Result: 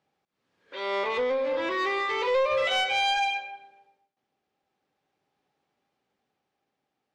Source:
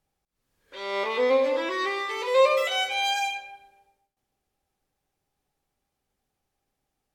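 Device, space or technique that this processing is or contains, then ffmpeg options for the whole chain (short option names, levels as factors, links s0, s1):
AM radio: -af "highpass=180,lowpass=3900,acompressor=threshold=0.0631:ratio=6,asoftclip=type=tanh:threshold=0.0708,tremolo=f=0.36:d=0.33,volume=1.88"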